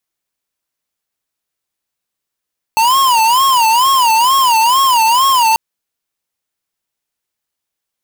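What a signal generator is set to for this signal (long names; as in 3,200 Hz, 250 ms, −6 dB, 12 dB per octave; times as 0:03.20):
siren wail 884–1,090 Hz 2.2 per second square −10.5 dBFS 2.79 s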